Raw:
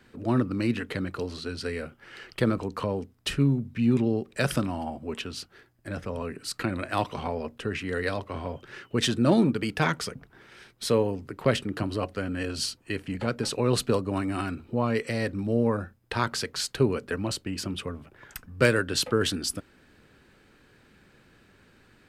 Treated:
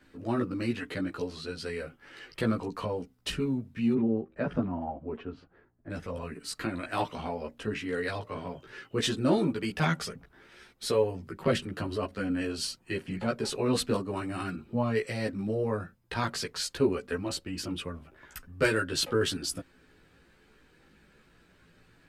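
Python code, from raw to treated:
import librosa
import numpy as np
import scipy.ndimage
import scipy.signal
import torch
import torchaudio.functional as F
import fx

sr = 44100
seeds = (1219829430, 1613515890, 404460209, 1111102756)

y = fx.lowpass(x, sr, hz=1200.0, slope=12, at=(3.93, 5.9))
y = fx.chorus_voices(y, sr, voices=6, hz=0.16, base_ms=15, depth_ms=3.9, mix_pct=50)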